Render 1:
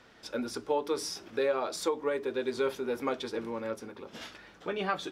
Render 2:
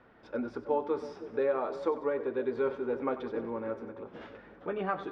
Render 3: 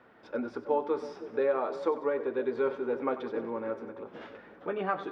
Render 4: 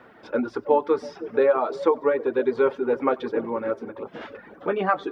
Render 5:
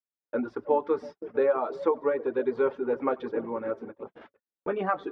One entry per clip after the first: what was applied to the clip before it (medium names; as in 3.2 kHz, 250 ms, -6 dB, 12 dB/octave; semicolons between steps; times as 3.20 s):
low-pass 1.5 kHz 12 dB/octave; on a send: two-band feedback delay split 660 Hz, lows 320 ms, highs 94 ms, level -12.5 dB
high-pass 190 Hz 6 dB/octave; trim +2 dB
reverb removal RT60 0.68 s; trim +9 dB
gate -35 dBFS, range -56 dB; treble shelf 3.8 kHz -11 dB; trim -4.5 dB